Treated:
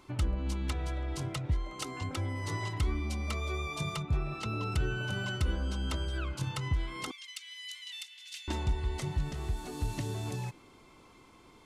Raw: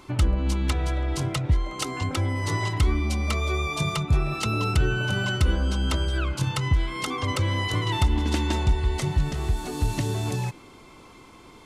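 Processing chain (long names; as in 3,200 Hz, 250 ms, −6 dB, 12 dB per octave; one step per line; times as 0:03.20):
0:04.02–0:04.72: high-shelf EQ 6,100 Hz −11 dB
0:07.11–0:08.48: inverse Chebyshev high-pass filter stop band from 400 Hz, stop band 80 dB
level −9 dB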